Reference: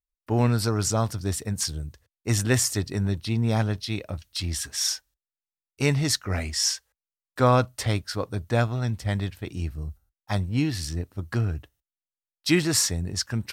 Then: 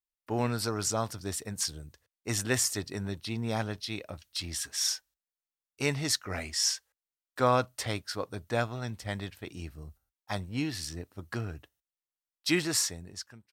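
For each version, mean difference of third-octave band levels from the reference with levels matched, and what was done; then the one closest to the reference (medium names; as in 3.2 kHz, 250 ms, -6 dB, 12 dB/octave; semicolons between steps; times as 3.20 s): 3.0 dB: fade out at the end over 0.91 s; bass shelf 190 Hz -11 dB; trim -3.5 dB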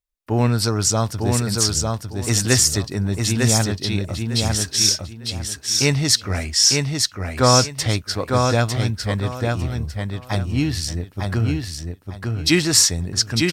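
6.0 dB: on a send: feedback delay 902 ms, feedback 24%, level -3.5 dB; on the sum: dynamic bell 5.4 kHz, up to +6 dB, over -38 dBFS, Q 0.71; trim +3.5 dB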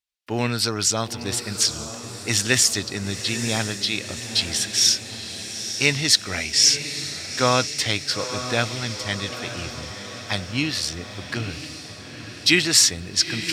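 9.0 dB: frequency weighting D; echo that smears into a reverb 909 ms, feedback 60%, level -10 dB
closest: first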